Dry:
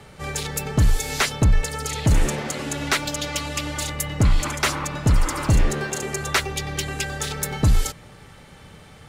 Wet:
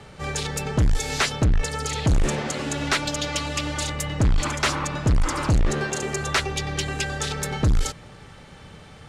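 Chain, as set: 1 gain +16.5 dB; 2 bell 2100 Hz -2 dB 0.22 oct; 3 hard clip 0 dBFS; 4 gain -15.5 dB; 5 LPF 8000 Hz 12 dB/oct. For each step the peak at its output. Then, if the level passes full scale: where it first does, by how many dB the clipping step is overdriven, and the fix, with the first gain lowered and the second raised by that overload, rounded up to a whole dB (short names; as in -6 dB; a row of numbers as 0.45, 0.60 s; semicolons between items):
+7.5, +8.0, 0.0, -15.5, -14.5 dBFS; step 1, 8.0 dB; step 1 +8.5 dB, step 4 -7.5 dB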